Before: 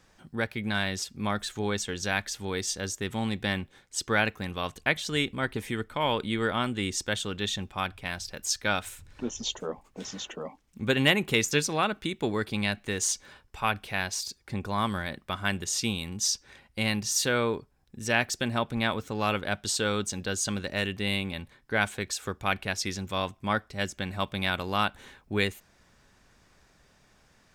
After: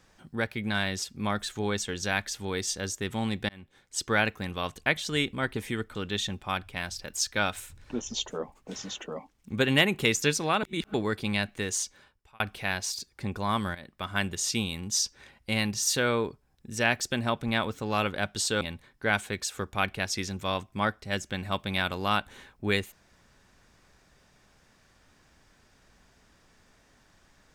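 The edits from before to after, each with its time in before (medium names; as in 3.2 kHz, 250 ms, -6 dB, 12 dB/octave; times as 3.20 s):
3.49–3.97 s: fade in
5.95–7.24 s: delete
11.92–12.23 s: reverse
12.85–13.69 s: fade out
15.04–15.46 s: fade in, from -13.5 dB
19.90–21.29 s: delete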